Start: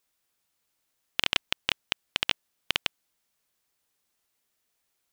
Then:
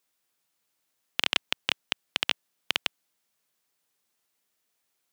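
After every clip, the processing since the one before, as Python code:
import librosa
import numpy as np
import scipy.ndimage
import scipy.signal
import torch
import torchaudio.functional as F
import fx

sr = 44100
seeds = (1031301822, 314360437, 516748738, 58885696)

y = scipy.signal.sosfilt(scipy.signal.butter(2, 120.0, 'highpass', fs=sr, output='sos'), x)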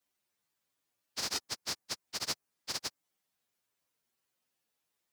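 y = fx.partial_stretch(x, sr, pct=119)
y = fx.dynamic_eq(y, sr, hz=3300.0, q=1.1, threshold_db=-48.0, ratio=4.0, max_db=-7)
y = y * librosa.db_to_amplitude(1.5)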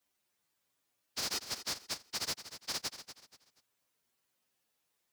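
y = np.clip(10.0 ** (34.5 / 20.0) * x, -1.0, 1.0) / 10.0 ** (34.5 / 20.0)
y = fx.echo_feedback(y, sr, ms=240, feedback_pct=31, wet_db=-12)
y = y * librosa.db_to_amplitude(2.5)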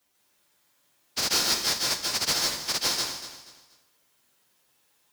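y = fx.rev_plate(x, sr, seeds[0], rt60_s=0.61, hf_ratio=0.95, predelay_ms=120, drr_db=-1.5)
y = y * librosa.db_to_amplitude(9.0)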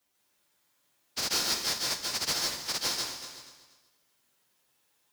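y = x + 10.0 ** (-16.5 / 20.0) * np.pad(x, (int(373 * sr / 1000.0), 0))[:len(x)]
y = y * librosa.db_to_amplitude(-4.5)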